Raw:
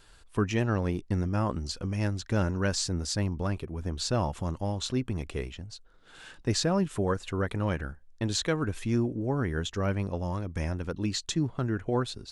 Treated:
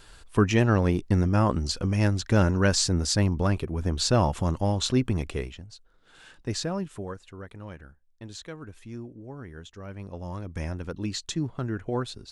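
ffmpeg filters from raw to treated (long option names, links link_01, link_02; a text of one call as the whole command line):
ffmpeg -i in.wav -af "volume=17dB,afade=type=out:start_time=5.11:duration=0.54:silence=0.354813,afade=type=out:start_time=6.62:duration=0.65:silence=0.354813,afade=type=in:start_time=9.88:duration=0.67:silence=0.281838" out.wav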